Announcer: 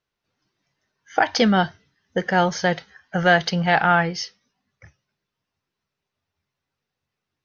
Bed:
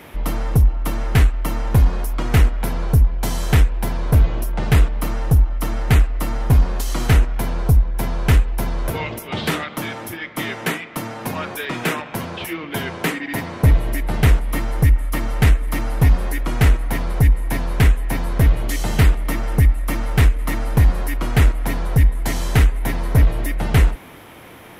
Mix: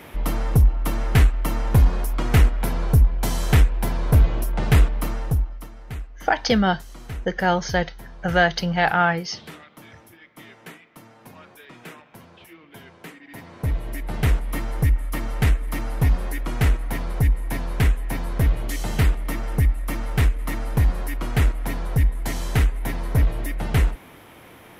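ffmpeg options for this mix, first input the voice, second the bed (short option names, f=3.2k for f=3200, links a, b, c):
-filter_complex "[0:a]adelay=5100,volume=-1.5dB[a];[1:a]volume=12.5dB,afade=t=out:st=4.9:d=0.8:silence=0.133352,afade=t=in:st=13.21:d=1.21:silence=0.199526[b];[a][b]amix=inputs=2:normalize=0"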